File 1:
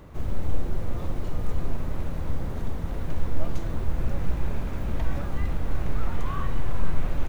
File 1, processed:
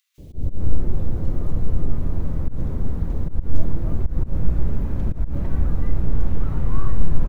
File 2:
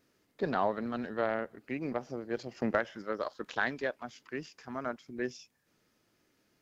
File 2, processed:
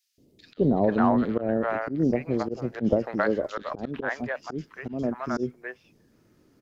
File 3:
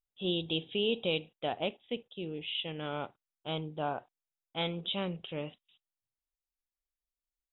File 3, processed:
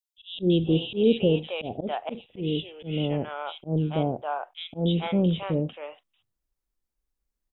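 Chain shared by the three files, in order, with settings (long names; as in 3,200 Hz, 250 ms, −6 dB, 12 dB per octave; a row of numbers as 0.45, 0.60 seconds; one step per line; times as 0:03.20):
tilt shelving filter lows +6.5 dB, about 760 Hz
three-band delay without the direct sound highs, lows, mids 180/450 ms, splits 670/2,900 Hz
volume swells 120 ms
loudness normalisation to −27 LKFS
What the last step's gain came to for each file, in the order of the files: +0.5, +9.5, +9.5 decibels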